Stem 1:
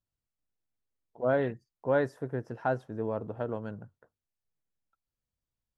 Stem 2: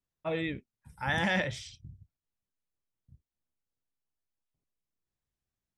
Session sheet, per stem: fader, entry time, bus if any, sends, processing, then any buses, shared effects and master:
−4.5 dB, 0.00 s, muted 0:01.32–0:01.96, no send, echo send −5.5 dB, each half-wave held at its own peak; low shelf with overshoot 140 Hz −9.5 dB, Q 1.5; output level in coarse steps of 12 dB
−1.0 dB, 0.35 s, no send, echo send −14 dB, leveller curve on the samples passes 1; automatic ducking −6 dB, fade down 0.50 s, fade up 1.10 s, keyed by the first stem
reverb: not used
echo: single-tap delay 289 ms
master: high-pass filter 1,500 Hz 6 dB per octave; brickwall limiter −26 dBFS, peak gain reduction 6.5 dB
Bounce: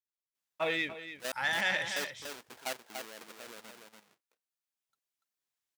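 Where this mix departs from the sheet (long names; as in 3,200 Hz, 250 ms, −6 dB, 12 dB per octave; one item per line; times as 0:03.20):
stem 2 −1.0 dB → +6.0 dB
master: missing brickwall limiter −26 dBFS, peak gain reduction 6.5 dB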